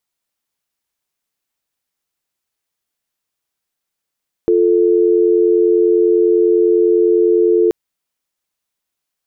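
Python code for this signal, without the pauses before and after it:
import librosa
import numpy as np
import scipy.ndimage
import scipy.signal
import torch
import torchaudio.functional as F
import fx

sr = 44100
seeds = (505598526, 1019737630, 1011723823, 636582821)

y = fx.call_progress(sr, length_s=3.23, kind='dial tone', level_db=-12.0)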